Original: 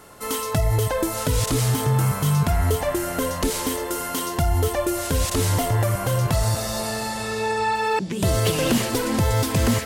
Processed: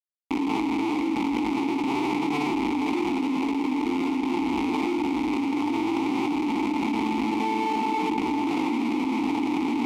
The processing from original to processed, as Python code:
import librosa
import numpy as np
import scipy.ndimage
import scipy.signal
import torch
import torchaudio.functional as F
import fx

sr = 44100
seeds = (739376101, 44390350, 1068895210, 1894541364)

p1 = scipy.signal.sosfilt(scipy.signal.butter(2, 3200.0, 'lowpass', fs=sr, output='sos'), x)
p2 = fx.rev_gated(p1, sr, seeds[0], gate_ms=130, shape='rising', drr_db=1.0)
p3 = fx.schmitt(p2, sr, flips_db=-20.5)
p4 = fx.graphic_eq(p3, sr, hz=(125, 250, 2000), db=(-12, 9, -6))
p5 = p4 + fx.echo_filtered(p4, sr, ms=624, feedback_pct=40, hz=800.0, wet_db=-9.5, dry=0)
p6 = fx.quant_float(p5, sr, bits=2)
p7 = fx.vowel_filter(p6, sr, vowel='u')
p8 = fx.tilt_shelf(p7, sr, db=-7.5, hz=650.0)
y = fx.env_flatten(p8, sr, amount_pct=100)